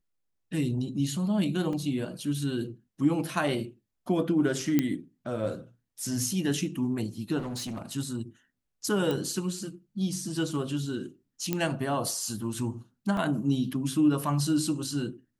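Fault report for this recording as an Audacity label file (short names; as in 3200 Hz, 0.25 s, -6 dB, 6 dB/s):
1.730000	1.730000	gap 2.7 ms
4.790000	4.790000	pop -11 dBFS
7.380000	7.910000	clipped -31.5 dBFS
9.110000	9.110000	pop
11.530000	11.530000	pop -13 dBFS
13.170000	13.170000	gap 2.3 ms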